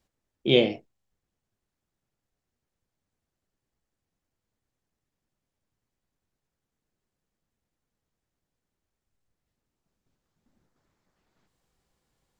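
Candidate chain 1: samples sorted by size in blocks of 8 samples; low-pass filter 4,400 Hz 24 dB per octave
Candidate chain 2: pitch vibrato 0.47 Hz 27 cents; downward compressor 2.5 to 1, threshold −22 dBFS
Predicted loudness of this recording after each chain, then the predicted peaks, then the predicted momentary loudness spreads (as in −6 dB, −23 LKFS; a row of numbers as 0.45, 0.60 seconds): −24.5, −28.5 LKFS; −7.0, −11.0 dBFS; 15, 12 LU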